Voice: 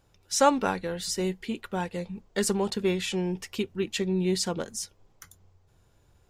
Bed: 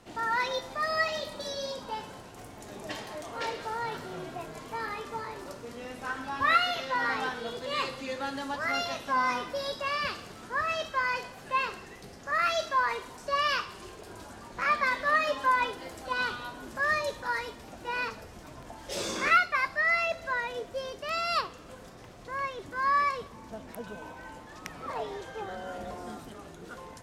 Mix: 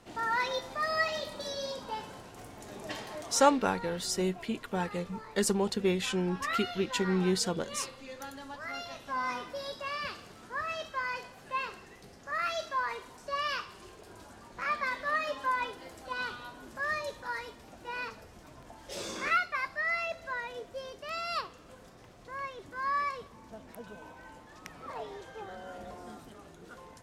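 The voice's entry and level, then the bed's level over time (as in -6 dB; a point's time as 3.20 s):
3.00 s, -2.0 dB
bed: 3.22 s -1.5 dB
3.64 s -9.5 dB
8.87 s -9.5 dB
9.31 s -5.5 dB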